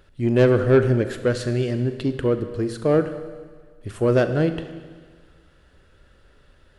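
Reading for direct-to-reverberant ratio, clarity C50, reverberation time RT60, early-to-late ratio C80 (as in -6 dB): 9.0 dB, 10.5 dB, 1.6 s, 11.5 dB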